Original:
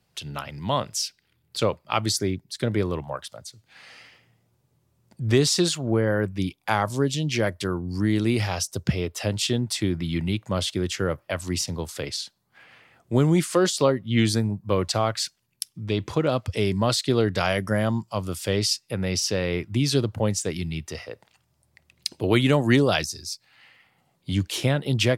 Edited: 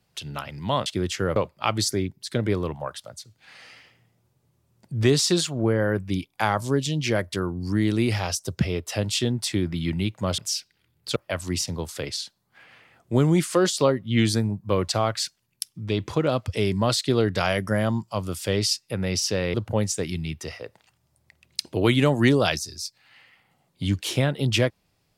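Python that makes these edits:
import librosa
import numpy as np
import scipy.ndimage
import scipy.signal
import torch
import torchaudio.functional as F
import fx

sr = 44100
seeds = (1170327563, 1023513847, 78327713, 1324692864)

y = fx.edit(x, sr, fx.swap(start_s=0.86, length_s=0.78, other_s=10.66, other_length_s=0.5),
    fx.cut(start_s=19.54, length_s=0.47), tone=tone)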